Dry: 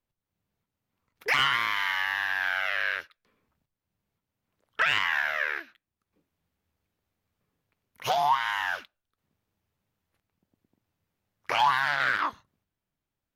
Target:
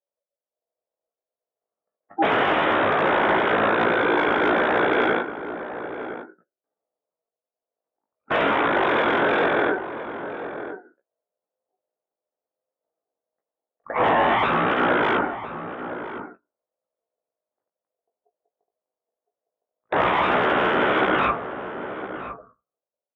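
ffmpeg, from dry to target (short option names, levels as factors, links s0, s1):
-filter_complex "[0:a]aemphasis=mode=reproduction:type=75kf,afftdn=nr=27:nf=-49,adynamicequalizer=threshold=0.00891:dfrequency=1400:dqfactor=0.89:tfrequency=1400:tqfactor=0.89:attack=5:release=100:ratio=0.375:range=3:mode=boostabove:tftype=bell,acontrast=85,aresample=11025,aeval=exprs='0.562*sin(PI/2*6.31*val(0)/0.562)':c=same,aresample=44100,aeval=exprs='val(0)*sin(2*PI*980*n/s)':c=same,asoftclip=type=hard:threshold=0.596,bandpass=f=1100:t=q:w=0.91:csg=0,flanger=delay=9.2:depth=1.8:regen=-20:speed=0.33:shape=sinusoidal,asplit=2[s0][s1];[s1]adelay=583.1,volume=0.316,highshelf=f=4000:g=-13.1[s2];[s0][s2]amix=inputs=2:normalize=0,asetrate=25442,aresample=44100"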